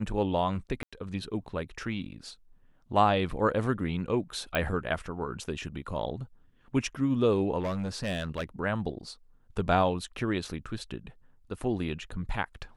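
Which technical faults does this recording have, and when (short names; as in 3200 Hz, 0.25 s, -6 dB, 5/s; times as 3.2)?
0.83–0.93 gap 95 ms
4.55 pop -15 dBFS
7.59–8.44 clipped -27 dBFS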